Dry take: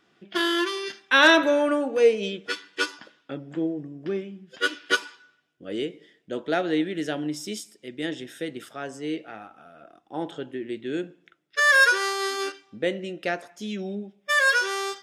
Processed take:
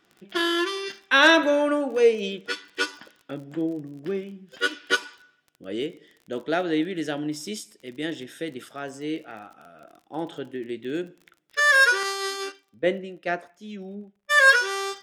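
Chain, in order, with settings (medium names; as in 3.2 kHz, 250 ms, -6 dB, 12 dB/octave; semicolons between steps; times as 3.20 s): crackle 34 per s -39 dBFS; 12.03–14.56 s: three bands expanded up and down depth 100%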